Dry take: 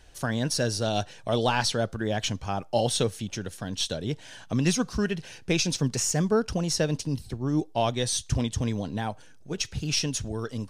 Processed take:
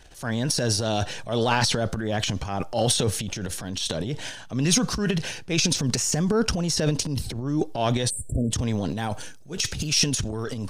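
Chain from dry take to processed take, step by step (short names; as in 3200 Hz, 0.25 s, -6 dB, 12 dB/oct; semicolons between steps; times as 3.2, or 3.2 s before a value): transient shaper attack -7 dB, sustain +11 dB; 8.1–8.52 spectral delete 670–7300 Hz; 8.9–10.07 high shelf 4300 Hz +7.5 dB; gain +2 dB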